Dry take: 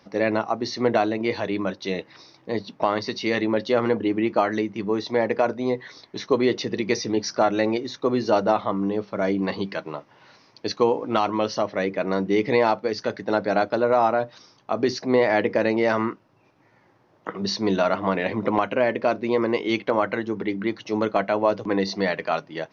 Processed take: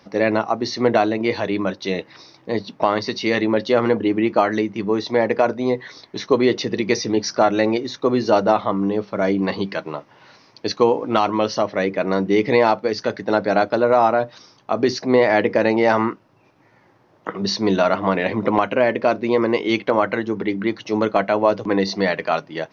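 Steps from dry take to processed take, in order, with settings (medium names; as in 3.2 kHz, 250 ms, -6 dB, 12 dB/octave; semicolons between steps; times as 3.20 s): 15.64–16.10 s: peaking EQ 830 Hz +8.5 dB 0.26 oct; trim +4 dB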